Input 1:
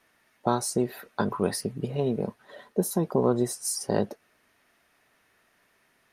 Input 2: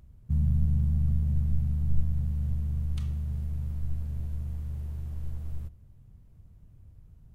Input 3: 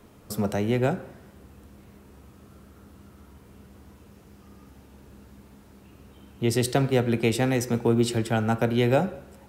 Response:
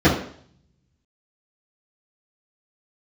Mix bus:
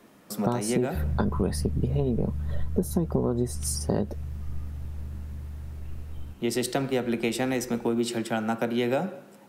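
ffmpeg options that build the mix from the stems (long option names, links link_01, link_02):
-filter_complex "[0:a]lowshelf=frequency=350:gain=11.5,volume=-1dB[link_01];[1:a]adelay=650,volume=-2.5dB[link_02];[2:a]highpass=frequency=160:width=0.5412,highpass=frequency=160:width=1.3066,bandreject=frequency=440:width=12,volume=-1dB[link_03];[link_01][link_02][link_03]amix=inputs=3:normalize=0,acompressor=threshold=-21dB:ratio=6"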